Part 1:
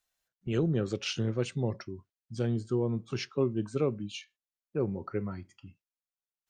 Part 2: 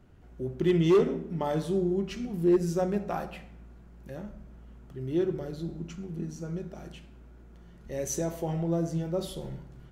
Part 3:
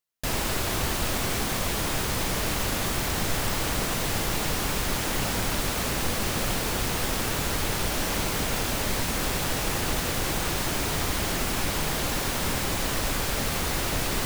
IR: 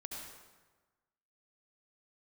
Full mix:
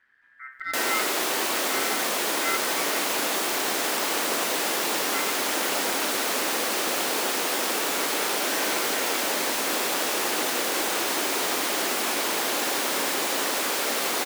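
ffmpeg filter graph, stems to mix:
-filter_complex "[1:a]aeval=exprs='val(0)*sin(2*PI*1700*n/s)':c=same,volume=-5.5dB[a];[2:a]highpass=f=290:w=0.5412,highpass=f=290:w=1.3066,adelay=500,volume=0.5dB,asplit=2[b][c];[c]volume=-4dB[d];[3:a]atrim=start_sample=2205[e];[d][e]afir=irnorm=-1:irlink=0[f];[a][b][f]amix=inputs=3:normalize=0"

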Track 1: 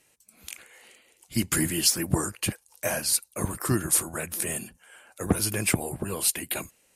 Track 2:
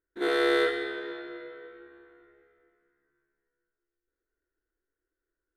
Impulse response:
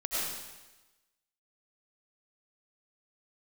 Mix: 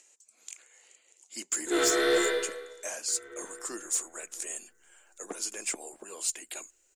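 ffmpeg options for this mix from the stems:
-filter_complex "[0:a]highpass=f=330:w=0.5412,highpass=f=330:w=1.3066,acompressor=mode=upward:threshold=-49dB:ratio=2.5,lowpass=f=7.1k:t=q:w=6.7,volume=-11dB,asplit=2[a][b];[1:a]highshelf=f=5.8k:g=8,aphaser=in_gain=1:out_gain=1:delay=4.8:decay=0.46:speed=1.2:type=triangular,adelay=1500,volume=1.5dB,asplit=3[c][d][e];[c]atrim=end=2.18,asetpts=PTS-STARTPTS,afade=t=out:st=2.176:d=0.004:c=hsin[f];[d]atrim=start=2.18:end=3.08,asetpts=PTS-STARTPTS,volume=0[g];[e]atrim=start=3.08,asetpts=PTS-STARTPTS,afade=t=in:d=0.004:c=hsin[h];[f][g][h]concat=n=3:v=0:a=1,asplit=2[i][j];[j]volume=-9dB[k];[b]apad=whole_len=311512[l];[i][l]sidechaincompress=threshold=-39dB:ratio=8:attack=45:release=315[m];[2:a]atrim=start_sample=2205[n];[k][n]afir=irnorm=-1:irlink=0[o];[a][m][o]amix=inputs=3:normalize=0,asoftclip=type=tanh:threshold=-18dB"

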